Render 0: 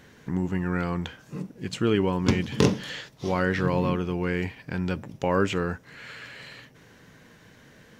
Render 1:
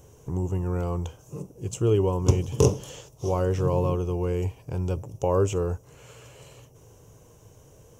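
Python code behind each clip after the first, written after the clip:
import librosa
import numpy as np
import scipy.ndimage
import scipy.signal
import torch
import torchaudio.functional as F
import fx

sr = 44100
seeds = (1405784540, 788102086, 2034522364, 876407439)

y = fx.curve_eq(x, sr, hz=(110.0, 220.0, 410.0, 1100.0, 1800.0, 2800.0, 4300.0, 6000.0), db=(0, -18, -4, -10, -29, -14, -22, -2))
y = F.gain(torch.from_numpy(y), 7.5).numpy()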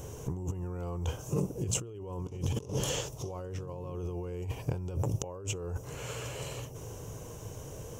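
y = fx.over_compress(x, sr, threshold_db=-36.0, ratio=-1.0)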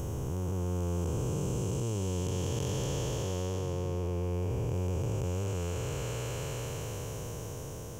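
y = fx.spec_blur(x, sr, span_ms=1150.0)
y = F.gain(torch.from_numpy(y), 6.0).numpy()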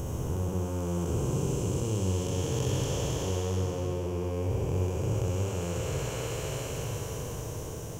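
y = fx.room_flutter(x, sr, wall_m=10.9, rt60_s=0.76)
y = F.gain(torch.from_numpy(y), 1.5).numpy()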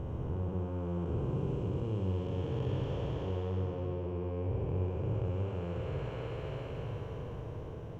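y = fx.air_absorb(x, sr, metres=420.0)
y = F.gain(torch.from_numpy(y), -4.0).numpy()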